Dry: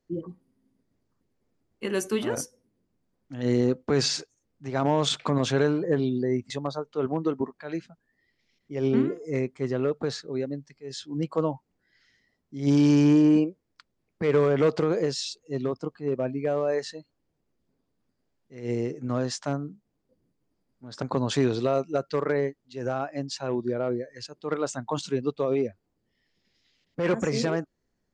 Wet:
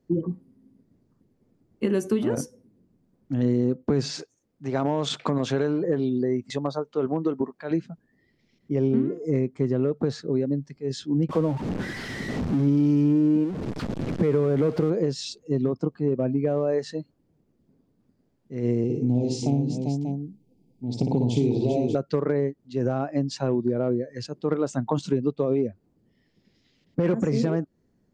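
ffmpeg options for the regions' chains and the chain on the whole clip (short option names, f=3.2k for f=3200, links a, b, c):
-filter_complex "[0:a]asettb=1/sr,asplit=3[a][b][c];[a]atrim=end=4.114[d];[b]atrim=start=4.11:end=7.71,asetpts=PTS-STARTPTS,afade=t=in:d=0.004:c=qsin,afade=t=out:st=3.596:d=0.004:c=qsin,acrossover=split=8500[e][f];[f]acompressor=threshold=-51dB:ratio=4:attack=1:release=60[g];[e][g]amix=inputs=2:normalize=0,lowshelf=f=320:g=-11.5[h];[c]atrim=start=7.706[i];[d][h]acrossfade=d=0.004:c1=hsin:c2=qsin[j];[j][i]acrossfade=d=0.004:c1=qsin:c2=hsin,asettb=1/sr,asplit=3[k][l][m];[k]atrim=end=11.294[n];[l]atrim=start=11.29:end=14.9,asetpts=PTS-STARTPTS,afade=t=in:d=0.004:c=qsin,afade=t=out:st=3.606:d=0.004:c=qsin,aeval=exprs='val(0)+0.5*0.0299*sgn(val(0))':c=same,adynamicsmooth=sensitivity=4.5:basefreq=4.5k[o];[m]atrim=start=14.896[p];[n][o]acrossfade=d=0.004:c1=hsin:c2=qsin[q];[q][p]acrossfade=d=0.004:c1=qsin:c2=hsin,asettb=1/sr,asplit=3[r][s][t];[r]atrim=end=18.844[u];[s]atrim=start=18.84:end=21.95,asetpts=PTS-STARTPTS,afade=t=in:d=0.004:c=qsin,afade=t=out:st=3.106:d=0.004:c=qsin,asuperstop=centerf=1400:order=12:qfactor=1.1,equalizer=f=580:w=5.9:g=-11,aecho=1:1:57|99|117|394|588:0.668|0.237|0.15|0.422|0.251,atrim=end_sample=137151[v];[t]atrim=start=21.946[w];[u][v]acrossfade=d=0.004:c1=hsin:c2=qsin[x];[x][w]acrossfade=d=0.004:c1=qsin:c2=hsin,equalizer=f=180:w=0.33:g=14,acompressor=threshold=-21dB:ratio=4"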